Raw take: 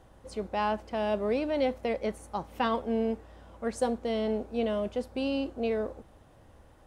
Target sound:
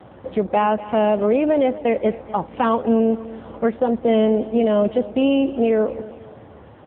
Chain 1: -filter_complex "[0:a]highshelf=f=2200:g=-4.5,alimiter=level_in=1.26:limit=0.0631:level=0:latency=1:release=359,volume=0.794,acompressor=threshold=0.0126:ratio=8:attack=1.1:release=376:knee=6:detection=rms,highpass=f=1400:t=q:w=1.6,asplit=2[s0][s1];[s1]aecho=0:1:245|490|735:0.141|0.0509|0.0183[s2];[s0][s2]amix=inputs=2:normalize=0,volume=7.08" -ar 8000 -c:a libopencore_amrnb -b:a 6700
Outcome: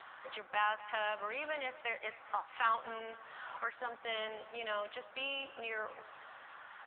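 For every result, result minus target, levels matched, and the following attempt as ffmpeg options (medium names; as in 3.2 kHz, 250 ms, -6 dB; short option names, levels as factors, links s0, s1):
compression: peak gain reduction +10 dB; 1 kHz band +5.5 dB
-filter_complex "[0:a]highshelf=f=2200:g=-4.5,alimiter=level_in=1.26:limit=0.0631:level=0:latency=1:release=359,volume=0.794,highpass=f=1400:t=q:w=1.6,asplit=2[s0][s1];[s1]aecho=0:1:245|490|735:0.141|0.0509|0.0183[s2];[s0][s2]amix=inputs=2:normalize=0,volume=7.08" -ar 8000 -c:a libopencore_amrnb -b:a 6700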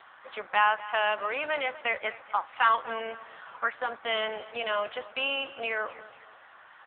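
1 kHz band +5.0 dB
-filter_complex "[0:a]highshelf=f=2200:g=-4.5,alimiter=level_in=1.26:limit=0.0631:level=0:latency=1:release=359,volume=0.794,asplit=2[s0][s1];[s1]aecho=0:1:245|490|735:0.141|0.0509|0.0183[s2];[s0][s2]amix=inputs=2:normalize=0,volume=7.08" -ar 8000 -c:a libopencore_amrnb -b:a 6700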